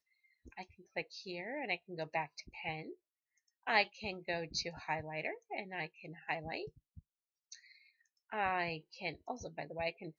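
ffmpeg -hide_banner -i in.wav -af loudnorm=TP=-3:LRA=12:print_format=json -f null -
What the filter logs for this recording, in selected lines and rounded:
"input_i" : "-39.9",
"input_tp" : "-15.1",
"input_lra" : "4.4",
"input_thresh" : "-50.9",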